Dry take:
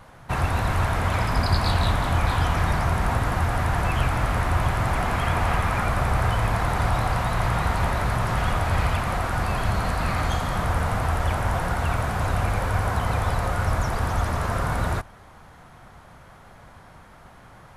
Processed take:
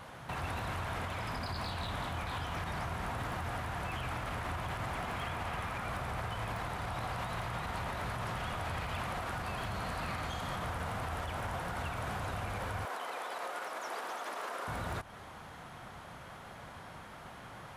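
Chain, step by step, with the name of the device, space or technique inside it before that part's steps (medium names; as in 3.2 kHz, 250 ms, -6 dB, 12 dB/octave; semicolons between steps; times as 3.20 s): broadcast voice chain (high-pass 110 Hz 6 dB/octave; de-esser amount 65%; compression, threshold -32 dBFS, peak gain reduction 13 dB; peaking EQ 3.1 kHz +4 dB 0.76 oct; peak limiter -29 dBFS, peak gain reduction 7.5 dB); 12.85–14.68 s: high-pass 330 Hz 24 dB/octave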